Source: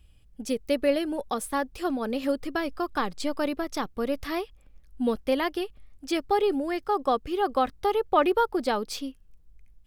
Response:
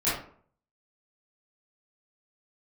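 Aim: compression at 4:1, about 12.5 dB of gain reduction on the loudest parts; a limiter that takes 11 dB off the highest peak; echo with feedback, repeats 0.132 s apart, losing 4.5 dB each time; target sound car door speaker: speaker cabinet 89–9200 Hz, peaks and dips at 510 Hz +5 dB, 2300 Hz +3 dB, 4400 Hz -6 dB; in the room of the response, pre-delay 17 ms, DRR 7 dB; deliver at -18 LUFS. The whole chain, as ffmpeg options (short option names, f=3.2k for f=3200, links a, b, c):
-filter_complex "[0:a]acompressor=threshold=-33dB:ratio=4,alimiter=level_in=8dB:limit=-24dB:level=0:latency=1,volume=-8dB,aecho=1:1:132|264|396|528|660|792|924|1056|1188:0.596|0.357|0.214|0.129|0.0772|0.0463|0.0278|0.0167|0.01,asplit=2[a][b];[1:a]atrim=start_sample=2205,adelay=17[c];[b][c]afir=irnorm=-1:irlink=0,volume=-18.5dB[d];[a][d]amix=inputs=2:normalize=0,highpass=89,equalizer=f=510:t=q:w=4:g=5,equalizer=f=2.3k:t=q:w=4:g=3,equalizer=f=4.4k:t=q:w=4:g=-6,lowpass=f=9.2k:w=0.5412,lowpass=f=9.2k:w=1.3066,volume=20dB"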